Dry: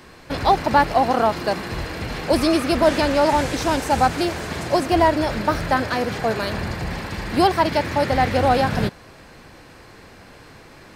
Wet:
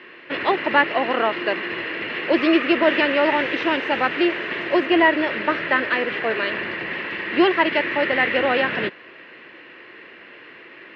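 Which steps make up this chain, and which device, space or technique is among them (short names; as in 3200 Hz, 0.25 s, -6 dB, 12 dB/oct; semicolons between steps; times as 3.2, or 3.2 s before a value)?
phone earpiece (speaker cabinet 330–3200 Hz, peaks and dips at 350 Hz +7 dB, 780 Hz -9 dB, 1900 Hz +10 dB, 2800 Hz +10 dB)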